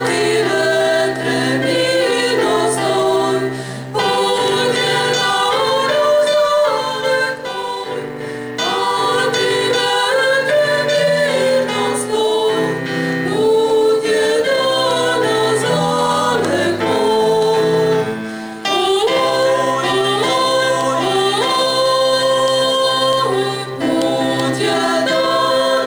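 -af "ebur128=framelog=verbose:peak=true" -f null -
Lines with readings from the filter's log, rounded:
Integrated loudness:
  I:         -15.2 LUFS
  Threshold: -25.3 LUFS
Loudness range:
  LRA:         1.6 LU
  Threshold: -35.3 LUFS
  LRA low:   -16.1 LUFS
  LRA high:  -14.5 LUFS
True peak:
  Peak:       -4.2 dBFS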